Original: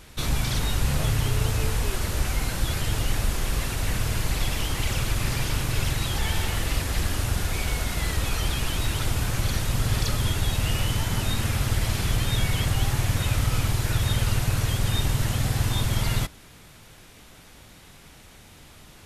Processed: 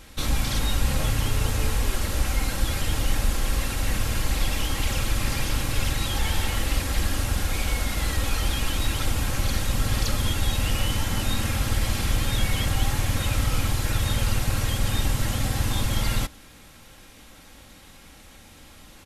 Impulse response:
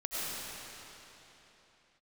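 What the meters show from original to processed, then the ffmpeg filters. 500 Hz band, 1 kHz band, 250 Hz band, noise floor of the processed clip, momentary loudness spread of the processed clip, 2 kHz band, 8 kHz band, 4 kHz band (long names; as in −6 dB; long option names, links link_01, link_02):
0.0 dB, +1.0 dB, +0.5 dB, −49 dBFS, 2 LU, +0.5 dB, +0.5 dB, +0.5 dB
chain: -af "aecho=1:1:3.7:0.42"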